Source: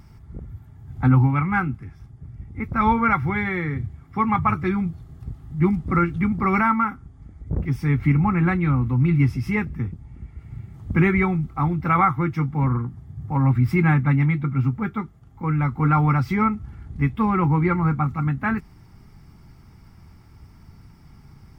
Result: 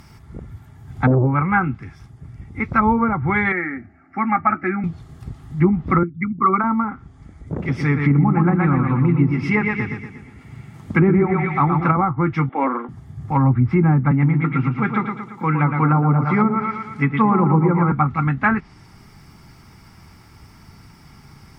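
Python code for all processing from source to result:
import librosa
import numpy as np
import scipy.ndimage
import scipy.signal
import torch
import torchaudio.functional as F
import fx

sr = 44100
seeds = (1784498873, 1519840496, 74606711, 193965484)

y = fx.chain(x, sr, fx.high_shelf(hz=2900.0, db=-9.5),
    fx.transformer_sat(knee_hz=280.0), at=(1.07, 1.64))
y = fx.chain(y, sr, fx.bandpass_edges(low_hz=150.0, high_hz=2200.0),
    fx.fixed_phaser(hz=680.0, stages=8), at=(3.52, 4.84))
y = fx.chain(y, sr, fx.envelope_sharpen(power=2.0),
    fx.highpass(hz=250.0, slope=12), at=(6.03, 6.64))
y = fx.chain(y, sr, fx.highpass(hz=120.0, slope=12),
    fx.echo_feedback(ms=119, feedback_pct=48, wet_db=-5), at=(7.49, 11.97))
y = fx.chain(y, sr, fx.cheby1_bandpass(low_hz=260.0, high_hz=3300.0, order=4),
    fx.peak_eq(hz=610.0, db=10.5, octaves=0.61), at=(12.49, 12.89))
y = fx.chain(y, sr, fx.highpass(hz=130.0, slope=24),
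    fx.echo_feedback(ms=114, feedback_pct=52, wet_db=-6), at=(14.11, 17.92))
y = fx.tilt_shelf(y, sr, db=-3.0, hz=970.0)
y = fx.env_lowpass_down(y, sr, base_hz=610.0, full_db=-16.0)
y = fx.low_shelf(y, sr, hz=100.0, db=-8.5)
y = y * librosa.db_to_amplitude(8.0)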